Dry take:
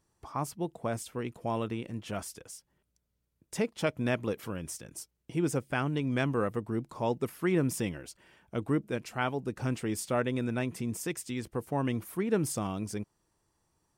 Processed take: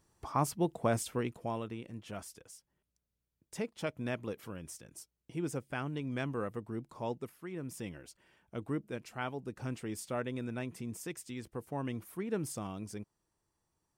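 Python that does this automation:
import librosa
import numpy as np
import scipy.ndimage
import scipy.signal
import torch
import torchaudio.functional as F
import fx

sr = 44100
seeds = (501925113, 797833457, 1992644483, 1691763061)

y = fx.gain(x, sr, db=fx.line((1.12, 3.0), (1.63, -7.0), (7.12, -7.0), (7.49, -16.0), (7.97, -7.0)))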